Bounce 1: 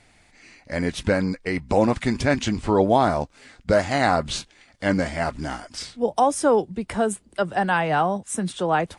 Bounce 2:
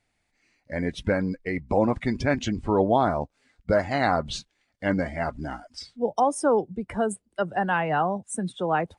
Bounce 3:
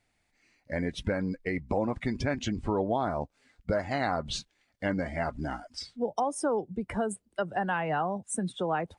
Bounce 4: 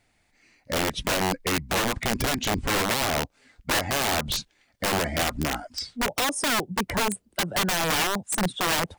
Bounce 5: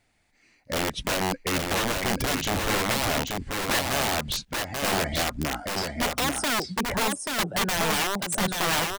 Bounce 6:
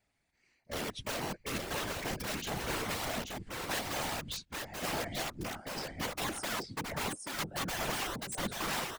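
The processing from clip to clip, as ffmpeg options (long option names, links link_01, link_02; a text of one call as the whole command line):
ffmpeg -i in.wav -af "afftdn=noise_reduction=15:noise_floor=-33,volume=-3dB" out.wav
ffmpeg -i in.wav -af "acompressor=threshold=-28dB:ratio=2.5" out.wav
ffmpeg -i in.wav -af "aeval=exprs='(mod(18.8*val(0)+1,2)-1)/18.8':channel_layout=same,volume=7dB" out.wav
ffmpeg -i in.wav -af "aecho=1:1:834:0.631,volume=-1.5dB" out.wav
ffmpeg -i in.wav -af "afftfilt=real='hypot(re,im)*cos(2*PI*random(0))':imag='hypot(re,im)*sin(2*PI*random(1))':win_size=512:overlap=0.75,volume=-4.5dB" out.wav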